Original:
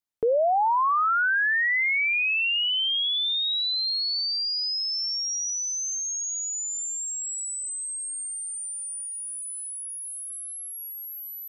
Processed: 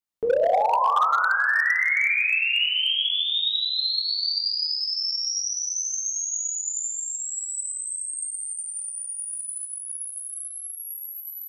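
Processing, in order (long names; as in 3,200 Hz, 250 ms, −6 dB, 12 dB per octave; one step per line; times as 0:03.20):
dense smooth reverb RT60 1.7 s, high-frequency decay 0.9×, DRR −3 dB
gain into a clipping stage and back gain 11.5 dB
level −3 dB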